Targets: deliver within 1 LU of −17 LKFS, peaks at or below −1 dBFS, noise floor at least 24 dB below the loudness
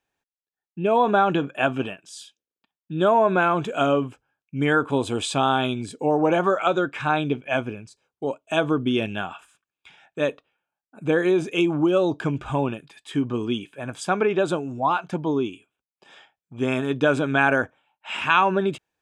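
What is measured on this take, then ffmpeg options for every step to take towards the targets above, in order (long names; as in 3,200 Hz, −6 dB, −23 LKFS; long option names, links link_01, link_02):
integrated loudness −23.0 LKFS; sample peak −4.5 dBFS; target loudness −17.0 LKFS
→ -af "volume=6dB,alimiter=limit=-1dB:level=0:latency=1"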